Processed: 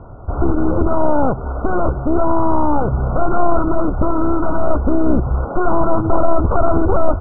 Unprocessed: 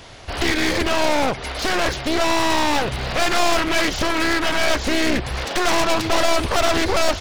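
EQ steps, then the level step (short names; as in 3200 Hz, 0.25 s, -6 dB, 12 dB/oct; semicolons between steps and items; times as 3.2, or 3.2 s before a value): brick-wall FIR low-pass 1500 Hz; air absorption 430 m; low shelf 240 Hz +7.5 dB; +3.5 dB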